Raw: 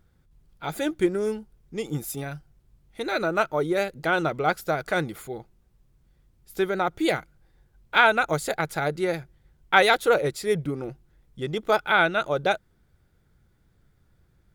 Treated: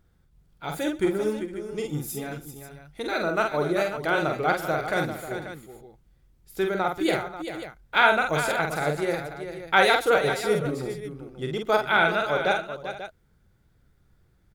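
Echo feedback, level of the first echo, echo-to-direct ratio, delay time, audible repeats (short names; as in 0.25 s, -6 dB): no steady repeat, -4.0 dB, -2.5 dB, 47 ms, 5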